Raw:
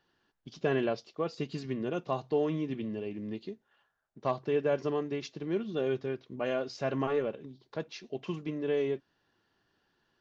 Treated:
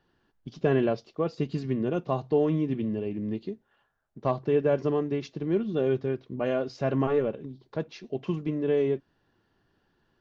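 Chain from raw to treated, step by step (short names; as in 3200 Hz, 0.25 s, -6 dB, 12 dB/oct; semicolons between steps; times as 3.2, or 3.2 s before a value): tilt -2 dB/oct; gain +2.5 dB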